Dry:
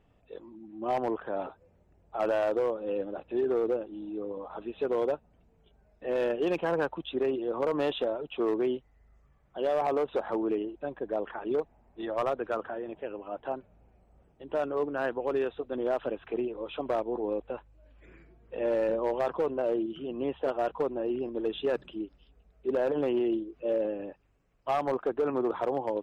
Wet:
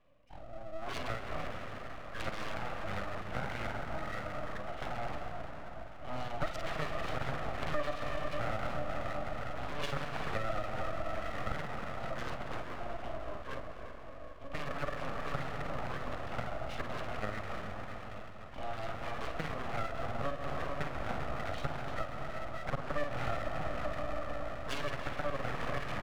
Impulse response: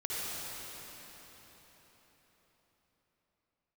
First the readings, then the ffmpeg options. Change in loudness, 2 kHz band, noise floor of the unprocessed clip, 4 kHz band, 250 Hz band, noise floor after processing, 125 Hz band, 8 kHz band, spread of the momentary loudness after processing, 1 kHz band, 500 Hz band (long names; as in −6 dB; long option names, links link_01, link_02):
−8.0 dB, +2.5 dB, −65 dBFS, 0.0 dB, −11.0 dB, −45 dBFS, +7.5 dB, can't be measured, 8 LU, −3.0 dB, −11.5 dB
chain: -filter_complex "[0:a]asplit=3[link_01][link_02][link_03];[link_01]bandpass=frequency=300:width_type=q:width=8,volume=0dB[link_04];[link_02]bandpass=frequency=870:width_type=q:width=8,volume=-6dB[link_05];[link_03]bandpass=frequency=2240:width_type=q:width=8,volume=-9dB[link_06];[link_04][link_05][link_06]amix=inputs=3:normalize=0,bandreject=frequency=990:width=5.4,asubboost=boost=2.5:cutoff=180,aeval=exprs='0.0447*(cos(1*acos(clip(val(0)/0.0447,-1,1)))-cos(1*PI/2))+0.0112*(cos(7*acos(clip(val(0)/0.0447,-1,1)))-cos(7*PI/2))+0.000355*(cos(8*acos(clip(val(0)/0.0447,-1,1)))-cos(8*PI/2))':channel_layout=same,aecho=1:1:40|51:0.335|0.422,asplit=2[link_07][link_08];[1:a]atrim=start_sample=2205,lowpass=2600,adelay=133[link_09];[link_08][link_09]afir=irnorm=-1:irlink=0,volume=-8.5dB[link_10];[link_07][link_10]amix=inputs=2:normalize=0,acompressor=threshold=-46dB:ratio=4,acrossover=split=180[link_11][link_12];[link_12]aeval=exprs='abs(val(0))':channel_layout=same[link_13];[link_11][link_13]amix=inputs=2:normalize=0,volume=16.5dB"